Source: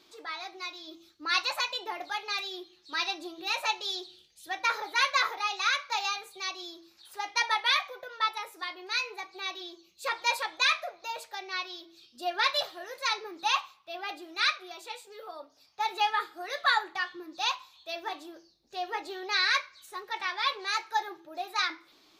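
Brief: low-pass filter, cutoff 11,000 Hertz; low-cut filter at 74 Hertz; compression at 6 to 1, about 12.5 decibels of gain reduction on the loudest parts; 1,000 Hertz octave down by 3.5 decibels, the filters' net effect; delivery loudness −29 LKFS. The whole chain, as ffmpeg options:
ffmpeg -i in.wav -af "highpass=74,lowpass=11000,equalizer=frequency=1000:width_type=o:gain=-4.5,acompressor=threshold=-36dB:ratio=6,volume=11dB" out.wav

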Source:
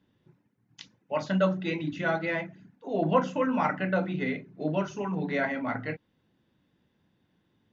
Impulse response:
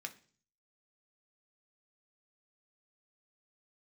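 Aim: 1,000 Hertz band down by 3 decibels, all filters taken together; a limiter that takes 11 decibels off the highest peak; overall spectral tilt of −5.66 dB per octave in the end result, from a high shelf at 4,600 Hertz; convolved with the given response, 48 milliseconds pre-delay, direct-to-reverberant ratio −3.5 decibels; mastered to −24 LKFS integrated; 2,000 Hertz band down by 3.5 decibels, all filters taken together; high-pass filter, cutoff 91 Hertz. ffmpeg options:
-filter_complex "[0:a]highpass=91,equalizer=frequency=1000:width_type=o:gain=-3,equalizer=frequency=2000:width_type=o:gain=-4,highshelf=frequency=4600:gain=3.5,alimiter=limit=-22.5dB:level=0:latency=1,asplit=2[link_01][link_02];[1:a]atrim=start_sample=2205,adelay=48[link_03];[link_02][link_03]afir=irnorm=-1:irlink=0,volume=5.5dB[link_04];[link_01][link_04]amix=inputs=2:normalize=0,volume=4.5dB"

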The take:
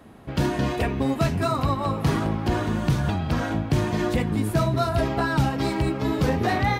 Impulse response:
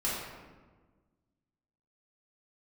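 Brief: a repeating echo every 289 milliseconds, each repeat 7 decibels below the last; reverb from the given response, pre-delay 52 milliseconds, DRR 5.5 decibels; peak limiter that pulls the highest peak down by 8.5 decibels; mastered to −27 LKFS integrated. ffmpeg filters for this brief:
-filter_complex "[0:a]alimiter=limit=-20.5dB:level=0:latency=1,aecho=1:1:289|578|867|1156|1445:0.447|0.201|0.0905|0.0407|0.0183,asplit=2[link_01][link_02];[1:a]atrim=start_sample=2205,adelay=52[link_03];[link_02][link_03]afir=irnorm=-1:irlink=0,volume=-13dB[link_04];[link_01][link_04]amix=inputs=2:normalize=0"

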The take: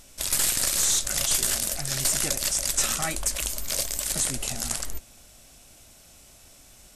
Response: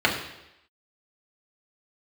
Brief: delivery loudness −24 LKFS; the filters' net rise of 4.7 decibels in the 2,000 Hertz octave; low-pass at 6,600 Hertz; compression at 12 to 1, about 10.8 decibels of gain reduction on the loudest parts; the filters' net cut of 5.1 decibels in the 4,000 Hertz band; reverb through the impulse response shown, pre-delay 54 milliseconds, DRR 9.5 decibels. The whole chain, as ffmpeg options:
-filter_complex "[0:a]lowpass=6600,equalizer=frequency=2000:width_type=o:gain=8,equalizer=frequency=4000:width_type=o:gain=-8,acompressor=threshold=-34dB:ratio=12,asplit=2[link_01][link_02];[1:a]atrim=start_sample=2205,adelay=54[link_03];[link_02][link_03]afir=irnorm=-1:irlink=0,volume=-27dB[link_04];[link_01][link_04]amix=inputs=2:normalize=0,volume=13.5dB"

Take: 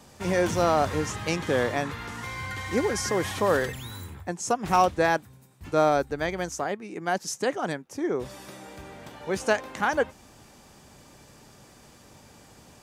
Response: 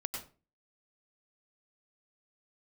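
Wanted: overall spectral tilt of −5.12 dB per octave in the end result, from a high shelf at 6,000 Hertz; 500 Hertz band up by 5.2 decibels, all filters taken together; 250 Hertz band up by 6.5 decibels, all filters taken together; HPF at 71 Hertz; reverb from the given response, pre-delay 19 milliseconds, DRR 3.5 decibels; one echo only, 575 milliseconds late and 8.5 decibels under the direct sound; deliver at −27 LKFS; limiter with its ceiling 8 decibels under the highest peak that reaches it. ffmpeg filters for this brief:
-filter_complex "[0:a]highpass=71,equalizer=frequency=250:width_type=o:gain=7.5,equalizer=frequency=500:width_type=o:gain=4.5,highshelf=frequency=6000:gain=-3,alimiter=limit=-13.5dB:level=0:latency=1,aecho=1:1:575:0.376,asplit=2[link_01][link_02];[1:a]atrim=start_sample=2205,adelay=19[link_03];[link_02][link_03]afir=irnorm=-1:irlink=0,volume=-4.5dB[link_04];[link_01][link_04]amix=inputs=2:normalize=0,volume=-2.5dB"

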